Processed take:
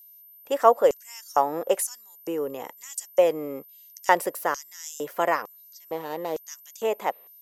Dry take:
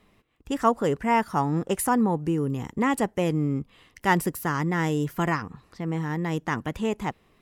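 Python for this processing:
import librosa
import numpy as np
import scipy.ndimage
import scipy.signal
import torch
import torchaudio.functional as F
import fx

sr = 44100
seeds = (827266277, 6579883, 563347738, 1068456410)

y = fx.median_filter(x, sr, points=25, at=(5.89, 6.45), fade=0.02)
y = y + 10.0 ** (-49.0 / 20.0) * np.sin(2.0 * np.pi * 13000.0 * np.arange(len(y)) / sr)
y = fx.filter_lfo_highpass(y, sr, shape='square', hz=1.1, low_hz=560.0, high_hz=6100.0, q=3.8)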